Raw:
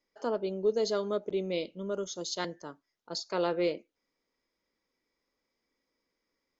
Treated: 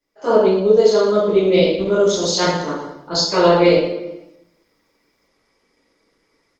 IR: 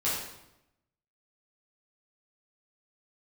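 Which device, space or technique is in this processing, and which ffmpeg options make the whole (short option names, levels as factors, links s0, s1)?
speakerphone in a meeting room: -filter_complex "[1:a]atrim=start_sample=2205[s0];[0:a][s0]afir=irnorm=-1:irlink=0,dynaudnorm=f=160:g=3:m=3.98" -ar 48000 -c:a libopus -b:a 20k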